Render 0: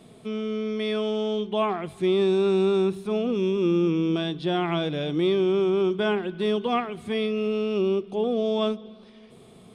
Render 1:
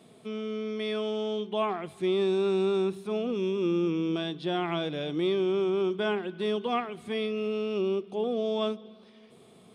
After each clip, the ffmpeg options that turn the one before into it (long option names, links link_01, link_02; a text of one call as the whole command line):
ffmpeg -i in.wav -af "highpass=frequency=180:poles=1,volume=-3.5dB" out.wav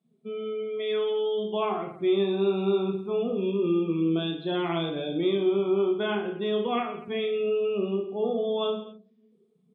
ffmpeg -i in.wav -filter_complex "[0:a]afftdn=noise_reduction=29:noise_floor=-39,asplit=2[link_01][link_02];[link_02]aecho=0:1:30|67.5|114.4|173|246.2:0.631|0.398|0.251|0.158|0.1[link_03];[link_01][link_03]amix=inputs=2:normalize=0" out.wav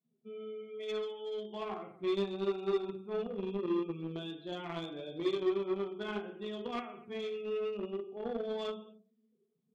ffmpeg -i in.wav -filter_complex "[0:a]flanger=delay=7.4:depth=2.9:regen=-33:speed=0.74:shape=triangular,asplit=2[link_01][link_02];[link_02]acrusher=bits=3:mix=0:aa=0.5,volume=-5dB[link_03];[link_01][link_03]amix=inputs=2:normalize=0,volume=-8.5dB" out.wav